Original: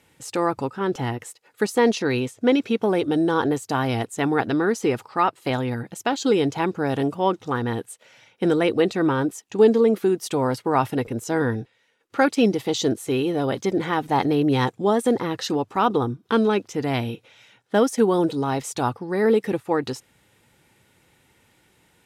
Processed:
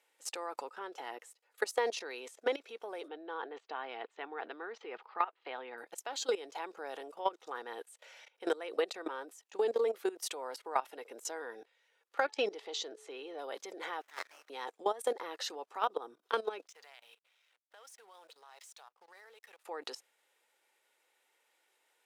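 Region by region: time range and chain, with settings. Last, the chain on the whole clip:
3.08–5.78 s: low-pass 3.4 kHz 24 dB/octave + peaking EQ 580 Hz -6.5 dB 0.21 oct
12.20–13.39 s: low-pass 5.8 kHz + de-hum 431 Hz, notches 4 + tape noise reduction on one side only decoder only
14.01–14.50 s: steep high-pass 1.4 kHz + sliding maximum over 9 samples
16.67–19.64 s: amplifier tone stack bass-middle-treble 10-0-10 + compression 10:1, threshold -45 dBFS + hysteresis with a dead band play -52 dBFS
whole clip: level held to a coarse grid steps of 18 dB; high-pass 460 Hz 24 dB/octave; compression 6:1, threshold -26 dBFS; trim -1.5 dB

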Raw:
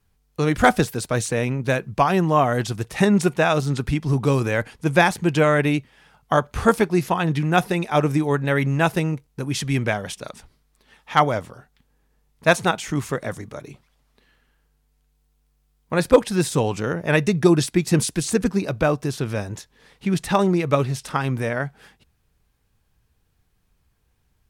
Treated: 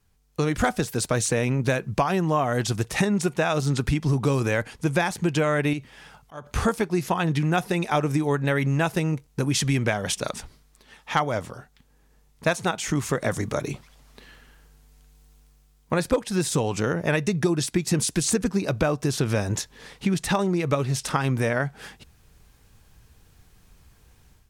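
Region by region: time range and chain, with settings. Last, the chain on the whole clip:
5.73–6.47 s: compression 4:1, threshold -26 dBFS + slow attack 259 ms
whole clip: level rider; peaking EQ 6.7 kHz +3.5 dB 1 oct; compression 5:1, threshold -20 dBFS

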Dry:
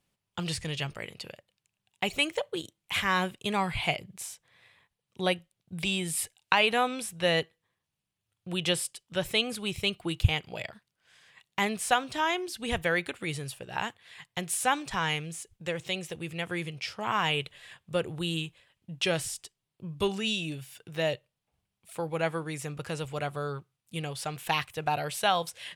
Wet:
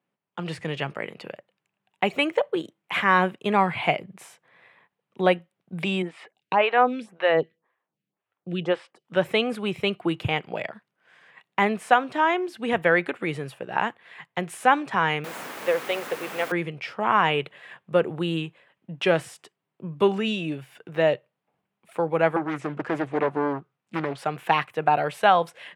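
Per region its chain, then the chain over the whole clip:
6.02–9.05 s: low-pass 5.1 kHz + lamp-driven phase shifter 1.9 Hz
15.24–16.52 s: resonant low shelf 320 Hz -12.5 dB, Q 1.5 + word length cut 6-bit, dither triangular
22.36–24.18 s: low-pass 8.2 kHz 24 dB/octave + loudspeaker Doppler distortion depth 0.87 ms
whole clip: high-pass 110 Hz; three-band isolator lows -22 dB, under 150 Hz, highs -19 dB, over 2.3 kHz; level rider gain up to 8 dB; trim +1 dB

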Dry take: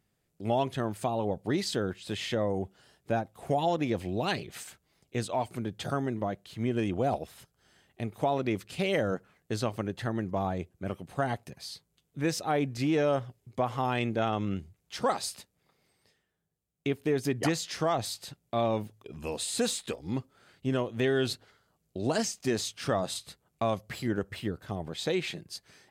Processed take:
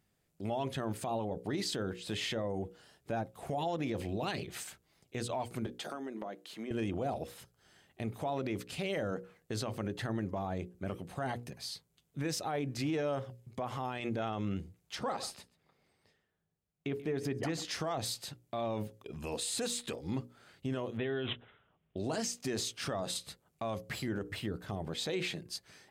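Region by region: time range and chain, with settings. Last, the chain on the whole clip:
5.66–6.71 s: high-pass 230 Hz 24 dB/octave + compression 5:1, threshold -37 dBFS
14.95–17.65 s: treble shelf 4.3 kHz -9.5 dB + delay 136 ms -21.5 dB
20.97–21.97 s: low-pass 6.9 kHz + careless resampling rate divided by 6×, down none, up filtered
whole clip: hum notches 60/120/180/240/300/360/420/480/540 Hz; peak limiter -26.5 dBFS

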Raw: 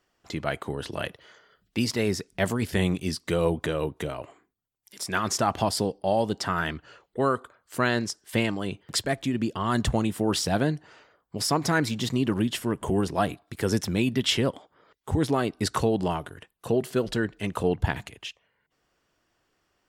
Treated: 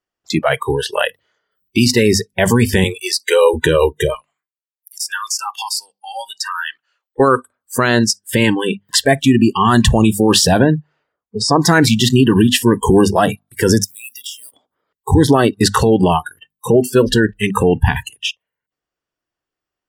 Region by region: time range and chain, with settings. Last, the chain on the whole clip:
2.84–3.54 s: high-pass 410 Hz 24 dB/octave + peaking EQ 720 Hz -4.5 dB 0.32 oct
4.15–7.20 s: Bessel high-pass 1.5 kHz + compression 2.5:1, threshold -37 dBFS
10.59–11.56 s: elliptic low-pass 9.2 kHz + treble shelf 4.8 kHz -12 dB + short-mantissa float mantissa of 8-bit
13.84–14.52 s: companding laws mixed up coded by A + differentiator + compression 16:1, threshold -40 dBFS
whole clip: hum notches 50/100/150/200/250 Hz; spectral noise reduction 30 dB; loudness maximiser +18 dB; trim -1 dB

